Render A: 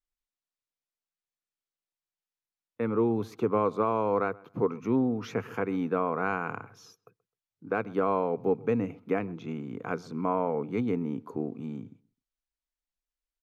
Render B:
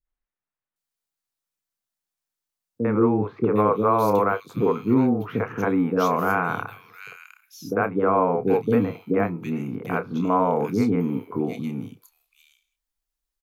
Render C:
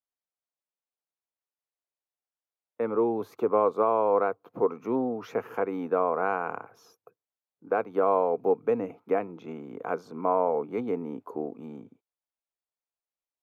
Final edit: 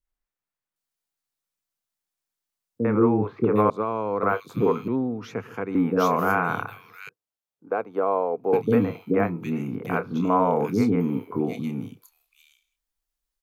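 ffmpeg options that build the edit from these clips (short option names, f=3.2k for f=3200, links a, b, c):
-filter_complex "[0:a]asplit=2[a][b];[1:a]asplit=4[c][d][e][f];[c]atrim=end=3.702[g];[a]atrim=start=3.698:end=4.232[h];[d]atrim=start=4.228:end=4.882[i];[b]atrim=start=4.878:end=5.752[j];[e]atrim=start=5.748:end=7.092[k];[2:a]atrim=start=7.088:end=8.532[l];[f]atrim=start=8.528[m];[g][h]acrossfade=d=0.004:c1=hsin:c2=hsin[n];[n][i]acrossfade=d=0.004:c1=hsin:c2=hsin[o];[o][j]acrossfade=d=0.004:c1=hsin:c2=hsin[p];[p][k]acrossfade=d=0.004:c1=hsin:c2=hsin[q];[q][l]acrossfade=d=0.004:c1=hsin:c2=hsin[r];[r][m]acrossfade=d=0.004:c1=hsin:c2=hsin"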